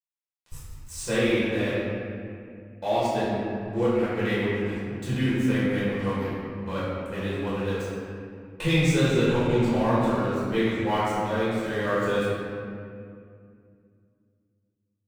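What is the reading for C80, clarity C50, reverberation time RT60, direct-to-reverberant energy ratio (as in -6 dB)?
-1.5 dB, -3.5 dB, 2.3 s, -11.0 dB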